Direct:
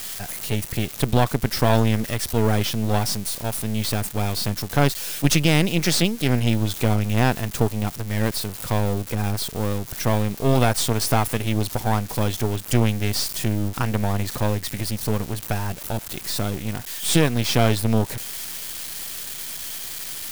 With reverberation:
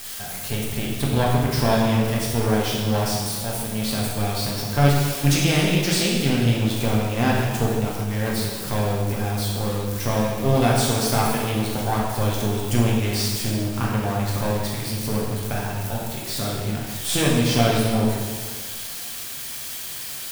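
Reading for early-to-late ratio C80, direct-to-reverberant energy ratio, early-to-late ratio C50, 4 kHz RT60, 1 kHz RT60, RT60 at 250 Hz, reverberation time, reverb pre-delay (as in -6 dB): 2.0 dB, -4.5 dB, 0.5 dB, 1.4 s, 1.7 s, 1.6 s, 1.7 s, 5 ms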